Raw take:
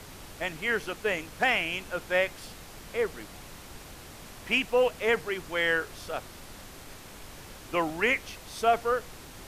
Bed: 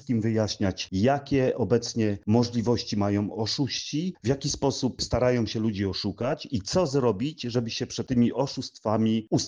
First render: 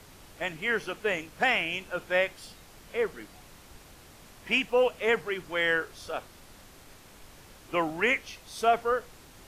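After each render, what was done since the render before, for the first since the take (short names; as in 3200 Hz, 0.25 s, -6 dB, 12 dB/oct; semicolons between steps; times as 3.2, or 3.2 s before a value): noise print and reduce 6 dB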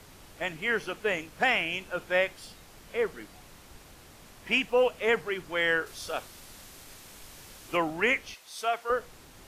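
5.86–7.77 high shelf 2800 Hz +7.5 dB; 8.34–8.9 HPF 1200 Hz 6 dB/oct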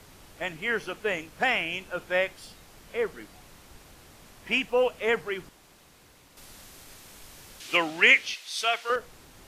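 5.49–6.37 room tone; 7.6–8.96 weighting filter D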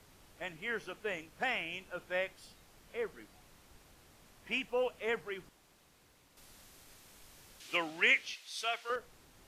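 gain -9.5 dB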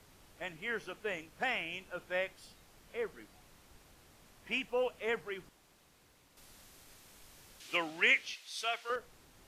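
nothing audible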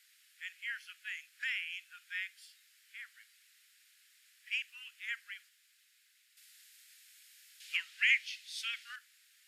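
steep high-pass 1600 Hz 48 dB/oct; notch 6000 Hz, Q 15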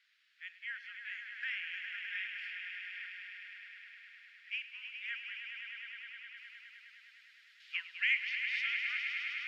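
air absorption 250 m; swelling echo 0.103 s, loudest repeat 5, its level -8 dB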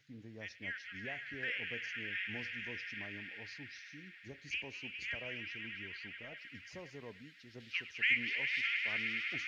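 add bed -26.5 dB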